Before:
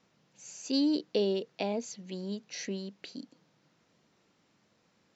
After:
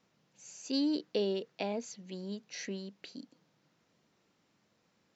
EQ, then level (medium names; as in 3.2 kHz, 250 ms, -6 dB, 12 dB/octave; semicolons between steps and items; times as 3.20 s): dynamic bell 1.6 kHz, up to +4 dB, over -50 dBFS, Q 1.1; -3.5 dB